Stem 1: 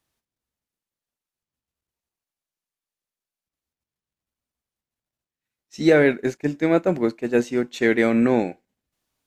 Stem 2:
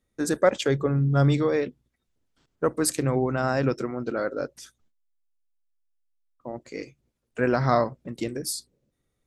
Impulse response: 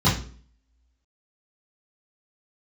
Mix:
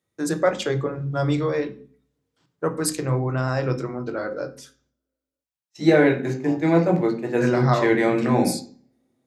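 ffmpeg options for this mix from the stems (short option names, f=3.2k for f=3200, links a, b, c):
-filter_complex "[0:a]agate=range=-23dB:threshold=-42dB:ratio=16:detection=peak,equalizer=f=770:t=o:w=0.77:g=4,volume=-3.5dB,asplit=3[a][b][c];[b]volume=-18dB[d];[1:a]volume=0dB,asplit=2[e][f];[f]volume=-23.5dB[g];[c]apad=whole_len=408459[h];[e][h]sidechaincompress=threshold=-22dB:ratio=8:attack=16:release=114[i];[2:a]atrim=start_sample=2205[j];[d][g]amix=inputs=2:normalize=0[k];[k][j]afir=irnorm=-1:irlink=0[l];[a][i][l]amix=inputs=3:normalize=0,highpass=170"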